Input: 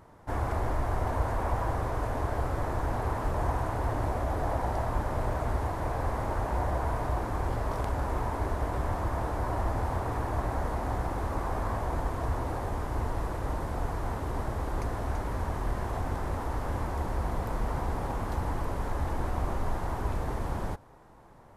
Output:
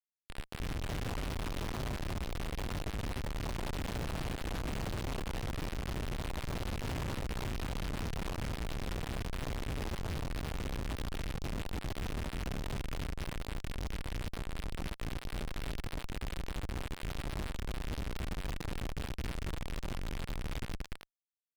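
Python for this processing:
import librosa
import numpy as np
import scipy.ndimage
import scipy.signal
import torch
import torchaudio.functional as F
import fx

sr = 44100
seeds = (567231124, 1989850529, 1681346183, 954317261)

y = fx.rattle_buzz(x, sr, strikes_db=-31.0, level_db=-26.0)
y = scipy.signal.sosfilt(scipy.signal.butter(2, 1000.0, 'highpass', fs=sr, output='sos'), y)
y = fx.echo_multitap(y, sr, ms=(225, 411), db=(-4.5, -8.0))
y = np.sign(y) * np.maximum(np.abs(y) - 10.0 ** (-47.0 / 20.0), 0.0)
y = scipy.signal.sosfilt(scipy.signal.butter(4, 8800.0, 'lowpass', fs=sr, output='sos'), y)
y = fx.high_shelf_res(y, sr, hz=3000.0, db=10.0, q=3.0)
y = y + 10.0 ** (-3.0 / 20.0) * np.pad(y, (int(291 * sr / 1000.0), 0))[:len(y)]
y = fx.schmitt(y, sr, flips_db=-28.0)
y = fx.doppler_dist(y, sr, depth_ms=0.56)
y = y * librosa.db_to_amplitude(1.5)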